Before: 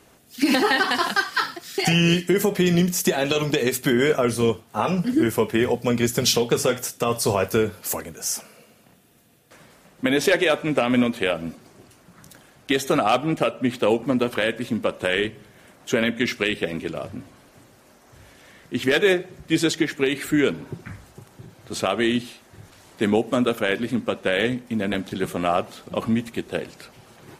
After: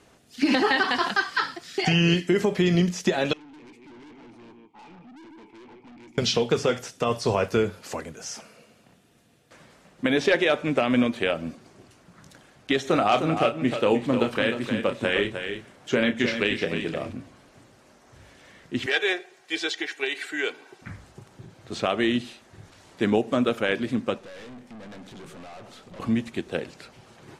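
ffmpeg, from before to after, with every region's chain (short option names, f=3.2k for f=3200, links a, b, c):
-filter_complex "[0:a]asettb=1/sr,asplit=3[a][b][c];[a]atrim=end=3.334[d];[b]atrim=start=3.33:end=6.18,asetpts=PTS-STARTPTS,afade=t=in:d=0.004:c=qsin,afade=t=out:st=2.846:d=0.004:c=qsin,asplit=3[e][f][g];[e]bandpass=f=300:t=q:w=8,volume=0dB[h];[f]bandpass=f=870:t=q:w=8,volume=-6dB[i];[g]bandpass=f=2.24k:t=q:w=8,volume=-9dB[j];[h][i][j]amix=inputs=3:normalize=0,aecho=1:1:149:0.266,atrim=end_sample=125685,aeval=exprs='(tanh(158*val(0)+0.1)-tanh(0.1))/158':c=same[k];[c]atrim=start=6.176[l];[d][k]acrossfade=d=0.004:c1=hsin:c2=qsin[m];[m][l]acrossfade=d=0.004:c1=qsin:c2=hsin,asettb=1/sr,asplit=3[n][o][p];[n]atrim=end=12.814[q];[o]atrim=start=12.81:end=17.13,asetpts=PTS-STARTPTS,afade=t=in:d=0.004:c=qsin,afade=t=out:st=4.316:d=0.004:c=qsin,asplit=2[r][s];[s]adelay=30,volume=-9dB[t];[r][t]amix=inputs=2:normalize=0,atrim=end_sample=190512,aecho=1:1:307:0.398,atrim=end_sample=190512[u];[p]atrim=start=17.126[v];[q][u]acrossfade=d=0.004:c1=hsin:c2=qsin[w];[w][v]acrossfade=d=0.004:c1=qsin:c2=hsin,asettb=1/sr,asplit=3[x][y][z];[x]atrim=end=18.864[aa];[y]atrim=start=18.86:end=20.82,asetpts=PTS-STARTPTS,afade=t=in:d=0.004:c=qsin,afade=t=out:st=1.956:d=0.004:c=qsin,highpass=720,bandreject=f=1.2k:w=8.6,aecho=1:1:2.6:0.49,atrim=end_sample=86436[ab];[z]atrim=start=20.816[ac];[aa][ab]acrossfade=d=0.004:c1=hsin:c2=qsin[ad];[ad][ac]acrossfade=d=0.004:c1=qsin:c2=hsin,asettb=1/sr,asplit=3[ae][af][ag];[ae]atrim=end=24.184[ah];[af]atrim=start=24.18:end=26,asetpts=PTS-STARTPTS,afade=t=in:d=0.004:c=qsin,afade=t=out:st=1.816:d=0.004:c=qsin,acompressor=threshold=-24dB:ratio=2.5:attack=3.2:release=140:knee=1:detection=peak,aeval=exprs='(tanh(89.1*val(0)+0.35)-tanh(0.35))/89.1':c=same[ai];[ag]atrim=start=25.996[aj];[ah][ai]acrossfade=d=0.004:c1=hsin:c2=qsin[ak];[ak][aj]acrossfade=d=0.004:c1=qsin:c2=hsin,lowpass=8.1k,acrossover=split=5700[al][am];[am]acompressor=threshold=-47dB:ratio=4:attack=1:release=60[an];[al][an]amix=inputs=2:normalize=0,volume=-2dB"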